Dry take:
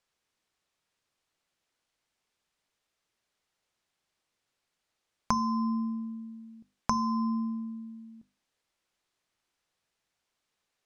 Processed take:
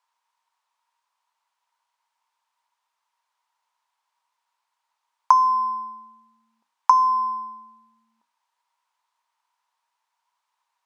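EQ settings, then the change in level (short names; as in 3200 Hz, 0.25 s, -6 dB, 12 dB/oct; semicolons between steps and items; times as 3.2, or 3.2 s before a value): resonant high-pass 950 Hz, resonance Q 11; -1.0 dB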